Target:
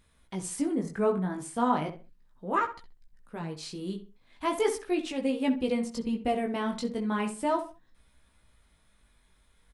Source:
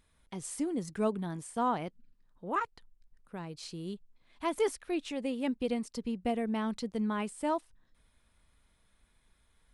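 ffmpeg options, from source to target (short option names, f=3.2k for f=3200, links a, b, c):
-filter_complex "[0:a]asettb=1/sr,asplit=3[a][b][c];[a]atrim=end=0.754[d];[b]atrim=start=0.75:end=1.34,asetpts=PTS-STARTPTS,afade=t=in:d=0.004:c=qsin,afade=t=out:st=0.586:d=0.004:c=qsin,highshelf=f=2.4k:t=q:w=1.5:g=-7[e];[c]atrim=start=1.336[f];[d][e]acrossfade=d=0.004:c1=hsin:c2=qsin[g];[g][f]acrossfade=d=0.004:c1=qsin:c2=hsin,asplit=2[h][i];[i]adelay=65,lowpass=f=2.5k:p=1,volume=-10dB,asplit=2[j][k];[k]adelay=65,lowpass=f=2.5k:p=1,volume=0.31,asplit=2[l][m];[m]adelay=65,lowpass=f=2.5k:p=1,volume=0.31[n];[h][j][l][n]amix=inputs=4:normalize=0,flanger=delay=15:depth=6.3:speed=0.37,volume=7dB"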